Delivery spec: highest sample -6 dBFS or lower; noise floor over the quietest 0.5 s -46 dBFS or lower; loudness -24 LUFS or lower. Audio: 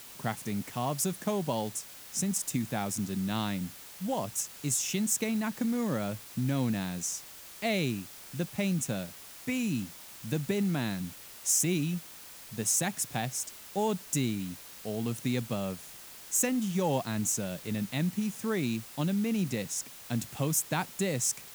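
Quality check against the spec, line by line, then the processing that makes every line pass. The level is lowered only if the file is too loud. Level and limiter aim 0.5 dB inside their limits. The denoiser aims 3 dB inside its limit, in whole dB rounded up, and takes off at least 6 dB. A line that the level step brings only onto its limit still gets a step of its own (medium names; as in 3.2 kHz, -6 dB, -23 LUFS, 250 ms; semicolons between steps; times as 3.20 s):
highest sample -14.0 dBFS: pass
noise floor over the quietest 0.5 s -48 dBFS: pass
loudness -31.5 LUFS: pass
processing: none needed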